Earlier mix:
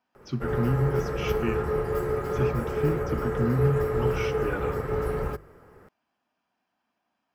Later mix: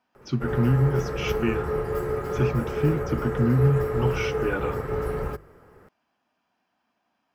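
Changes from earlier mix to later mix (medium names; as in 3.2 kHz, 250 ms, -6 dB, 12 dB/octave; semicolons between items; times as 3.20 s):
speech +6.5 dB; reverb: off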